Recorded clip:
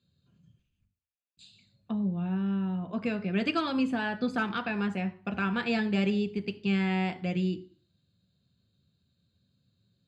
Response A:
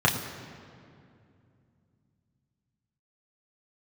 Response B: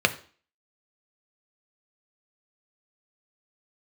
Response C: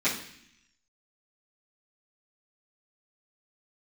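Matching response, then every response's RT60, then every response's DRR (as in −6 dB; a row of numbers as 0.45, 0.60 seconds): B; 2.5, 0.45, 0.65 seconds; −2.5, 7.0, −14.0 decibels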